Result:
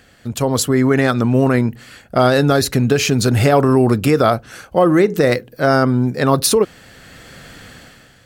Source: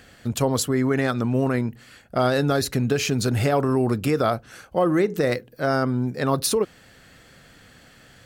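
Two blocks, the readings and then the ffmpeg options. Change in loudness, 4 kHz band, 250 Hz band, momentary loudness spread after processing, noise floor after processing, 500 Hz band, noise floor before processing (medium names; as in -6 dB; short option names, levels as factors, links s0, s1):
+7.5 dB, +7.0 dB, +7.5 dB, 7 LU, -49 dBFS, +7.5 dB, -52 dBFS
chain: -af "dynaudnorm=f=140:g=7:m=3.98"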